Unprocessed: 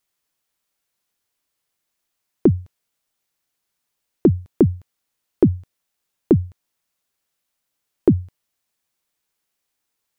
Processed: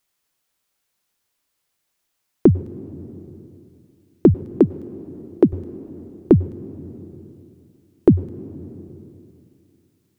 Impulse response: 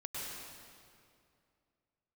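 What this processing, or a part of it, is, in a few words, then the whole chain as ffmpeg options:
compressed reverb return: -filter_complex "[0:a]asettb=1/sr,asplit=3[s0][s1][s2];[s0]atrim=end=4.344[s3];[s1]atrim=start=4.34:end=5.53,asetpts=PTS-STARTPTS,afade=t=in:d=0.004:c=qsin,afade=t=out:st=1.186:d=0.004:c=qsin,highpass=220[s4];[s2]atrim=start=5.526[s5];[s3][s4]acrossfade=d=0.004:c1=hsin:c2=qsin[s6];[s6][s5]acrossfade=d=0.004:c1=qsin:c2=hsin,asplit=2[s7][s8];[1:a]atrim=start_sample=2205[s9];[s8][s9]afir=irnorm=-1:irlink=0,acompressor=threshold=0.0708:ratio=4,volume=0.316[s10];[s7][s10]amix=inputs=2:normalize=0,volume=1.19"

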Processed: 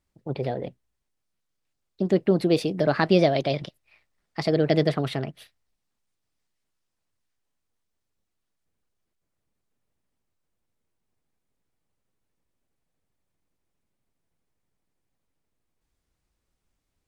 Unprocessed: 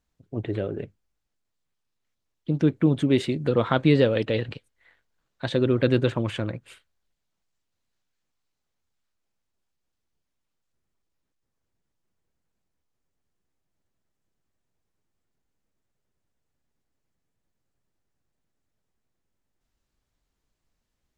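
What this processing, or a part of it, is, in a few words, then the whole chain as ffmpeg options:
nightcore: -af "asetrate=54684,aresample=44100"

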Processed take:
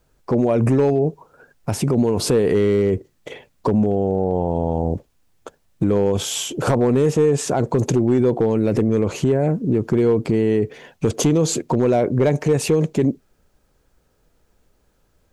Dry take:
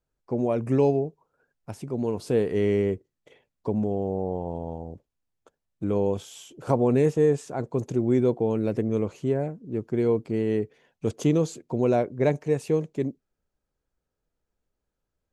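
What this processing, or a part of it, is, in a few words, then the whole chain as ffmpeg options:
loud club master: -af "acompressor=threshold=0.0501:ratio=2.5,asoftclip=type=hard:threshold=0.1,alimiter=level_in=26.6:limit=0.891:release=50:level=0:latency=1,volume=0.376"

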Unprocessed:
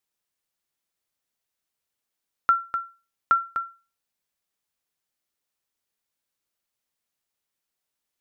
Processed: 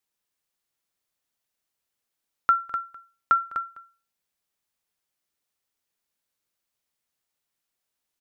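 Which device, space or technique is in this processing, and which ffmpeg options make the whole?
ducked delay: -filter_complex "[0:a]asplit=3[s0][s1][s2];[s1]adelay=204,volume=0.447[s3];[s2]apad=whole_len=371008[s4];[s3][s4]sidechaincompress=threshold=0.0178:ratio=8:attack=47:release=935[s5];[s0][s5]amix=inputs=2:normalize=0"

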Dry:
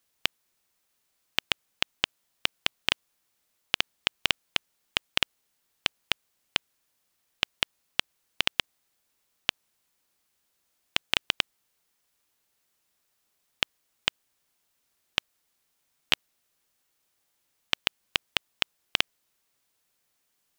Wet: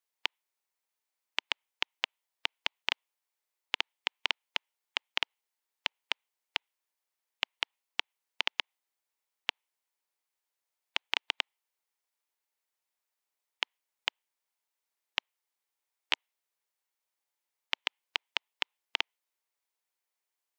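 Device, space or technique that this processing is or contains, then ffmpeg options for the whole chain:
laptop speaker: -af "highpass=f=350:w=0.5412,highpass=f=350:w=1.3066,equalizer=f=910:t=o:w=0.42:g=6,equalizer=f=2100:t=o:w=0.44:g=4,alimiter=limit=0.335:level=0:latency=1:release=105,afftdn=nr=16:nf=-49,volume=1.33"

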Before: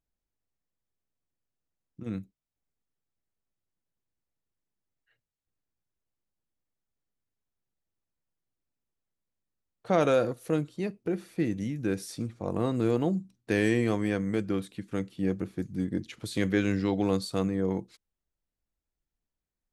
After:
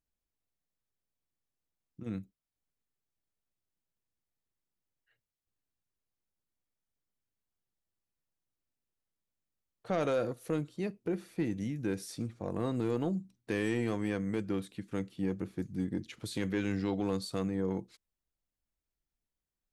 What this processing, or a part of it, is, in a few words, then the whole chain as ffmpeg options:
soft clipper into limiter: -af "asoftclip=type=tanh:threshold=0.158,alimiter=limit=0.1:level=0:latency=1:release=216,volume=0.708"

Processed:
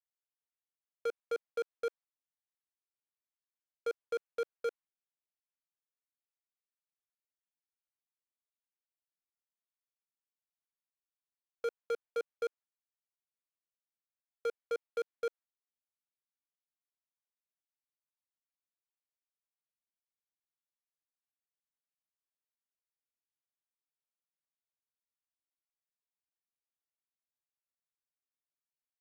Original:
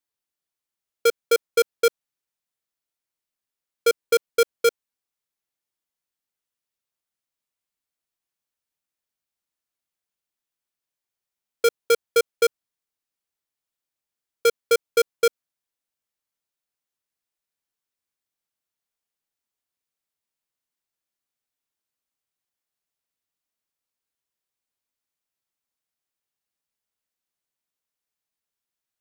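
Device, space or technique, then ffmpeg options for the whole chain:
walkie-talkie: -af "highpass=520,lowpass=2400,asoftclip=type=hard:threshold=0.0708,agate=range=0.398:threshold=0.00316:ratio=16:detection=peak,volume=0.447"

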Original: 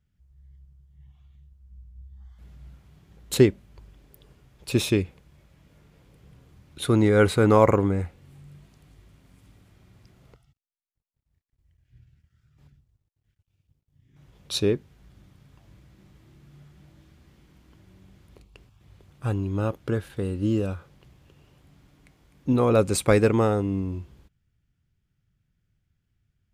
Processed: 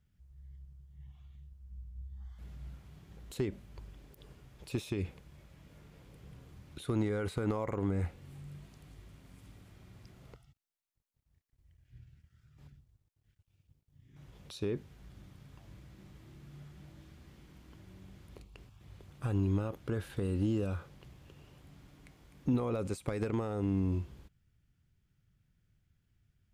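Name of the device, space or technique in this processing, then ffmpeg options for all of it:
de-esser from a sidechain: -filter_complex "[0:a]asplit=2[s0][s1];[s1]highpass=f=5300:p=1,apad=whole_len=1170366[s2];[s0][s2]sidechaincompress=threshold=0.00282:ratio=4:attack=0.94:release=48"

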